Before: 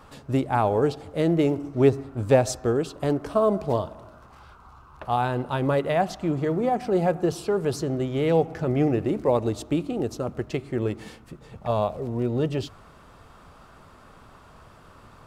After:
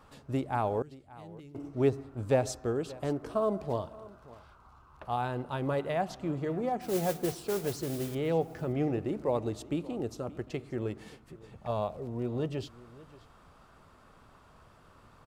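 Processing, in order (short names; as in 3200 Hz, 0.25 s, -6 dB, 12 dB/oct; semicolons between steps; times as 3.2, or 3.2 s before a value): 0.82–1.55 passive tone stack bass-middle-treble 6-0-2; 6.81–8.15 modulation noise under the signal 12 dB; echo 0.578 s -20 dB; gain -8 dB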